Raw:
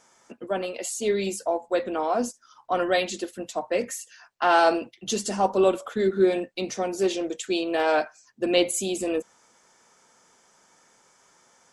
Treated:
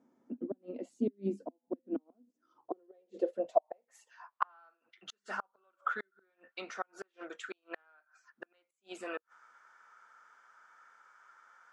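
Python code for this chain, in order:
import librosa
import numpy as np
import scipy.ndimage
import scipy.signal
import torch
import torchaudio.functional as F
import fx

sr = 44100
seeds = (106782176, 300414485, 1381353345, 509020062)

y = fx.gate_flip(x, sr, shuts_db=-17.0, range_db=-41)
y = fx.filter_sweep_bandpass(y, sr, from_hz=260.0, to_hz=1400.0, start_s=2.16, end_s=4.76, q=5.9)
y = y * librosa.db_to_amplitude(9.5)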